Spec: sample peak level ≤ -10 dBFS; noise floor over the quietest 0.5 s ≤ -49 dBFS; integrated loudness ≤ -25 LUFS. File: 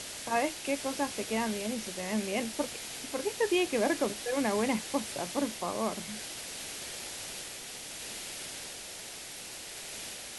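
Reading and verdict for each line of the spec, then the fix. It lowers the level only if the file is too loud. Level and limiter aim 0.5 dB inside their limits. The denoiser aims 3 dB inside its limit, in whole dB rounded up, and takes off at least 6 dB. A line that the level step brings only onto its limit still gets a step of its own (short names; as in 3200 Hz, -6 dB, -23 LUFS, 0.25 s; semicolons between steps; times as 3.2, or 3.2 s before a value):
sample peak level -16.0 dBFS: OK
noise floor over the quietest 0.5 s -44 dBFS: fail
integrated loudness -33.5 LUFS: OK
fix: denoiser 8 dB, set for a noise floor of -44 dBFS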